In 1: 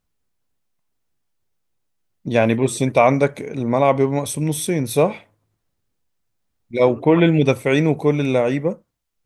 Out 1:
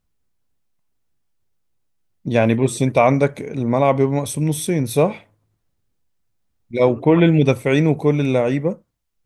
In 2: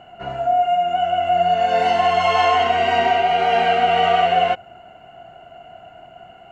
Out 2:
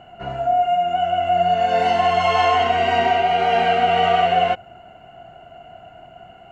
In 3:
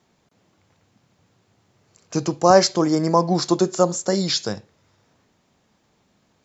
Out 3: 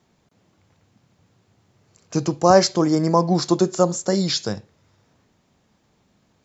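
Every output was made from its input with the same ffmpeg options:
-af "lowshelf=f=220:g=5,volume=-1dB"

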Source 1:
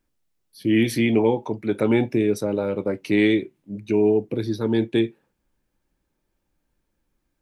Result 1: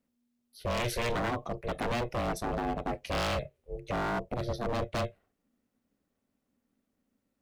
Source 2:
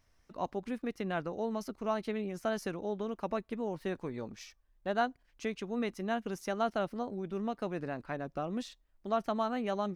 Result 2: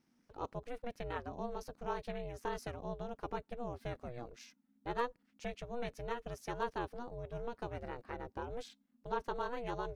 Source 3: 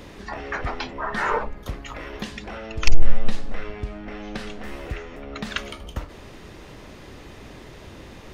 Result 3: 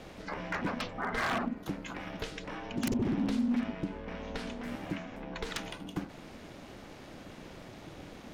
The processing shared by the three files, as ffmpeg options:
-af "aeval=exprs='0.106*(abs(mod(val(0)/0.106+3,4)-2)-1)':c=same,aeval=exprs='val(0)*sin(2*PI*240*n/s)':c=same,volume=-3dB"

